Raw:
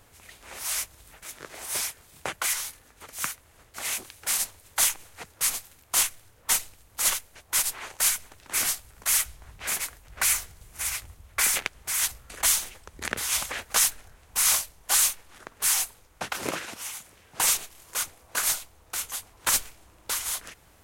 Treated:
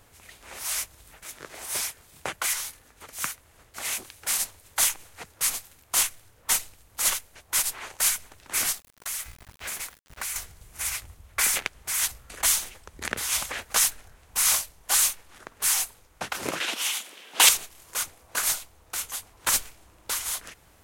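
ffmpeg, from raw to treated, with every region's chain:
ffmpeg -i in.wav -filter_complex "[0:a]asettb=1/sr,asplit=3[link_01][link_02][link_03];[link_01]atrim=end=8.724[link_04];[link_02]atrim=start=8.72:end=10.36,asetpts=PTS-STARTPTS,afade=type=in:duration=0.004:curve=qsin,afade=type=out:start_time=1.636:duration=0.004:curve=qsin,bandreject=frequency=96.25:width_type=h:width=4,bandreject=frequency=192.5:width_type=h:width=4,bandreject=frequency=288.75:width_type=h:width=4,bandreject=frequency=385:width_type=h:width=4,bandreject=frequency=481.25:width_type=h:width=4,bandreject=frequency=577.5:width_type=h:width=4,bandreject=frequency=673.75:width_type=h:width=4,bandreject=frequency=770:width_type=h:width=4,bandreject=frequency=866.25:width_type=h:width=4,bandreject=frequency=962.5:width_type=h:width=4,bandreject=frequency=1058.75:width_type=h:width=4,bandreject=frequency=1155:width_type=h:width=4,bandreject=frequency=1251.25:width_type=h:width=4,bandreject=frequency=1347.5:width_type=h:width=4,bandreject=frequency=1443.75:width_type=h:width=4,bandreject=frequency=1540:width_type=h:width=4,bandreject=frequency=1636.25:width_type=h:width=4,bandreject=frequency=1732.5:width_type=h:width=4,bandreject=frequency=1828.75:width_type=h:width=4,bandreject=frequency=1925:width_type=h:width=4,bandreject=frequency=2021.25:width_type=h:width=4,bandreject=frequency=2117.5:width_type=h:width=4,bandreject=frequency=2213.75:width_type=h:width=4,bandreject=frequency=2310:width_type=h:width=4,bandreject=frequency=2406.25:width_type=h:width=4,bandreject=frequency=2502.5:width_type=h:width=4,bandreject=frequency=2598.75:width_type=h:width=4,acompressor=threshold=-30dB:ratio=4:attack=3.2:release=140:knee=1:detection=peak,aeval=exprs='val(0)*gte(abs(val(0)),0.00631)':channel_layout=same[link_05];[link_03]atrim=start=10.356[link_06];[link_04][link_05]acrossfade=duration=0.004:curve1=hsin:curve2=qsin[link_07];[link_07][link_06]acrossfade=duration=0.004:curve1=qsin:curve2=hsin,asettb=1/sr,asplit=3[link_08][link_09][link_10];[link_08]atrim=end=16.604[link_11];[link_09]atrim=start=16.6:end=17.49,asetpts=PTS-STARTPTS,afade=type=in:duration=0.004:curve=qsin,afade=type=out:start_time=0.886:duration=0.004:curve=qsin,highpass=frequency=240:width=0.5412,highpass=frequency=240:width=1.3066,equalizer=frequency=3200:width=1.5:gain=10,acontrast=44[link_12];[link_10]atrim=start=17.486[link_13];[link_11][link_12]acrossfade=duration=0.004:curve1=hsin:curve2=qsin[link_14];[link_14][link_13]acrossfade=duration=0.004:curve1=qsin:curve2=hsin" out.wav

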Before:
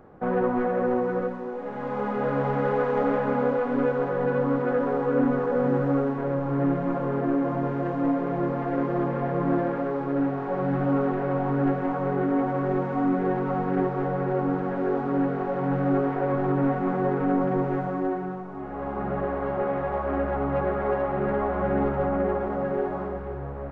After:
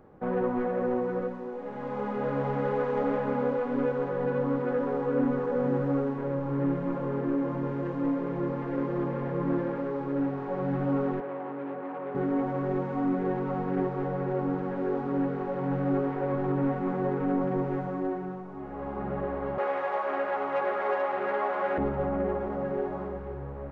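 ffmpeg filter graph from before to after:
ffmpeg -i in.wav -filter_complex "[0:a]asettb=1/sr,asplit=3[link_01][link_02][link_03];[link_01]atrim=end=11.204[link_04];[link_02]atrim=start=11.2:end=12.15,asetpts=PTS-STARTPTS,afade=type=in:duration=0.004:curve=qsin,afade=type=out:start_time=0.946:duration=0.004:curve=qsin,asoftclip=type=hard:threshold=-26dB,highpass=320,lowpass=2100,aemphasis=mode=reproduction:type=75kf[link_05];[link_03]atrim=start=12.146[link_06];[link_04][link_05]acrossfade=duration=0.004:curve1=hsin:curve2=qsin[link_07];[link_07][link_06]acrossfade=duration=0.004:curve1=qsin:curve2=hsin,asettb=1/sr,asplit=3[link_08][link_09][link_10];[link_08]atrim=end=19.584[link_11];[link_09]atrim=start=19.58:end=21.78,asetpts=PTS-STARTPTS,afade=type=in:duration=0.004:curve=qsin,afade=type=out:start_time=2.196:duration=0.004:curve=qsin,highpass=500,acontrast=63,tiltshelf=frequency=1200:gain=-4[link_12];[link_10]atrim=start=21.776[link_13];[link_11][link_12]acrossfade=duration=0.004:curve1=hsin:curve2=qsin[link_14];[link_14][link_13]acrossfade=duration=0.004:curve1=qsin:curve2=hsin,equalizer=frequency=1400:width_type=o:width=0.76:gain=-3,bandreject=frequency=700:width=12,volume=-3.5dB" out.wav

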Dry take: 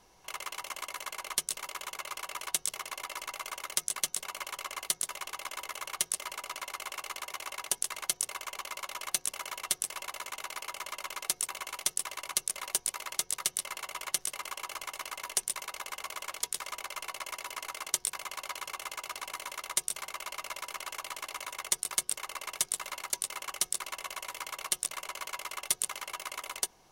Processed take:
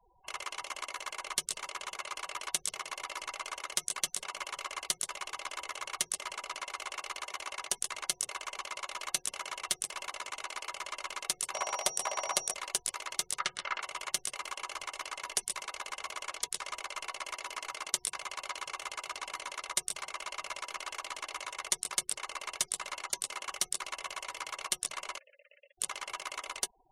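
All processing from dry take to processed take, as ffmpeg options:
ffmpeg -i in.wav -filter_complex "[0:a]asettb=1/sr,asplit=3[link_01][link_02][link_03];[link_01]atrim=end=11.544[link_04];[link_02]atrim=start=11.54:end=12.54,asetpts=PTS-STARTPTS,afade=type=in:duration=0.004:curve=qsin,afade=type=out:start_time=0.996:duration=0.004:curve=qsin,aeval=exprs='val(0)+0.00891*sin(2*PI*5700*n/s)':channel_layout=same,equalizer=frequency=680:width=1.1:gain=14.5[link_05];[link_03]atrim=start=12.536[link_06];[link_04][link_05]acrossfade=duration=0.004:curve1=hsin:curve2=qsin[link_07];[link_07][link_06]acrossfade=duration=0.004:curve1=qsin:curve2=hsin,asettb=1/sr,asplit=3[link_08][link_09][link_10];[link_08]atrim=end=13.394[link_11];[link_09]atrim=start=13.39:end=13.82,asetpts=PTS-STARTPTS,afade=type=in:duration=0.004:curve=qsin,afade=type=out:start_time=0.426:duration=0.004:curve=qsin,lowpass=4700,equalizer=frequency=1400:width_type=o:width=1.2:gain=10.5,bandreject=frequency=1100:width=11[link_12];[link_10]atrim=start=13.816[link_13];[link_11][link_12]acrossfade=duration=0.004:curve1=hsin:curve2=qsin[link_14];[link_14][link_13]acrossfade=duration=0.004:curve1=qsin:curve2=hsin,asettb=1/sr,asplit=3[link_15][link_16][link_17];[link_15]atrim=end=25.184[link_18];[link_16]atrim=start=25.18:end=25.78,asetpts=PTS-STARTPTS,afade=type=in:duration=0.004:curve=qsin,afade=type=out:start_time=0.596:duration=0.004:curve=qsin,equalizer=frequency=1100:width=5:gain=12.5,acompressor=threshold=-36dB:ratio=4:attack=3.2:release=140:knee=1:detection=peak,asplit=3[link_19][link_20][link_21];[link_19]bandpass=frequency=530:width_type=q:width=8,volume=0dB[link_22];[link_20]bandpass=frequency=1840:width_type=q:width=8,volume=-6dB[link_23];[link_21]bandpass=frequency=2480:width_type=q:width=8,volume=-9dB[link_24];[link_22][link_23][link_24]amix=inputs=3:normalize=0[link_25];[link_17]atrim=start=25.776[link_26];[link_18][link_25]acrossfade=duration=0.004:curve1=hsin:curve2=qsin[link_27];[link_27][link_26]acrossfade=duration=0.004:curve1=qsin:curve2=hsin,lowpass=9400,afftfilt=real='re*gte(hypot(re,im),0.00251)':imag='im*gte(hypot(re,im),0.00251)':win_size=1024:overlap=0.75" out.wav

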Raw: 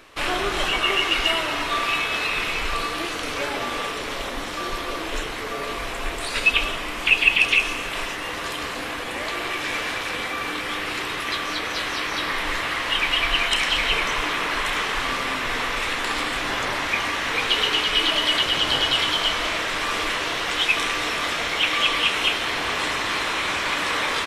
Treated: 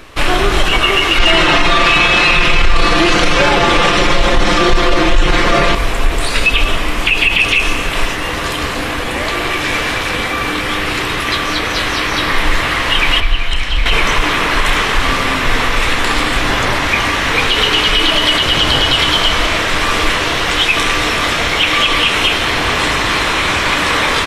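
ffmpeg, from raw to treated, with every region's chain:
ffmpeg -i in.wav -filter_complex "[0:a]asettb=1/sr,asplit=3[link_01][link_02][link_03];[link_01]atrim=end=1.184[link_04];[link_02]atrim=start=1.18:end=5.75,asetpts=PTS-STARTPTS,afade=type=in:duration=0.004:curve=qsin,afade=type=out:start_time=4.566:duration=0.004:curve=qsin,lowpass=6800,aecho=1:1:5.7:0.98,atrim=end_sample=201537,acontrast=78[link_05];[link_03]atrim=start=5.746[link_06];[link_04][link_05]acrossfade=duration=0.004:curve1=hsin:curve2=qsin[link_07];[link_07][link_06]acrossfade=duration=0.004:curve1=qsin:curve2=hsin,asettb=1/sr,asplit=3[link_08][link_09][link_10];[link_08]atrim=end=13.204[link_11];[link_09]atrim=start=13.2:end=13.86,asetpts=PTS-STARTPTS,afade=type=in:duration=0.004:curve=qsin,afade=type=out:start_time=0.656:duration=0.004:curve=qsin,bass=frequency=250:gain=2,treble=frequency=4000:gain=-12,acrossover=split=91|3200[link_12][link_13][link_14];[link_12]acompressor=threshold=-29dB:ratio=4[link_15];[link_13]acompressor=threshold=-35dB:ratio=4[link_16];[link_14]acompressor=threshold=-31dB:ratio=4[link_17];[link_15][link_16][link_17]amix=inputs=3:normalize=0[link_18];[link_10]atrim=start=13.856[link_19];[link_11][link_18]acrossfade=duration=0.004:curve1=hsin:curve2=qsin[link_20];[link_20][link_19]acrossfade=duration=0.004:curve1=qsin:curve2=hsin,lowshelf=frequency=170:gain=11.5,alimiter=level_in=10.5dB:limit=-1dB:release=50:level=0:latency=1,volume=-1dB" out.wav

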